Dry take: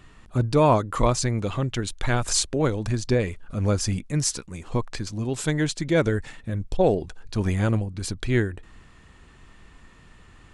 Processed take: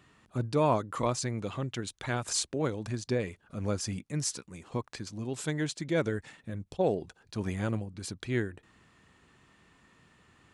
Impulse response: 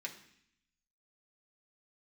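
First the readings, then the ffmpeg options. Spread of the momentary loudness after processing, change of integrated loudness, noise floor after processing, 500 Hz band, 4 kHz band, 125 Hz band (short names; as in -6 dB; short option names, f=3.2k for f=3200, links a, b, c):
10 LU, -8.0 dB, -69 dBFS, -7.5 dB, -7.5 dB, -10.0 dB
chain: -af "highpass=110,volume=-7.5dB"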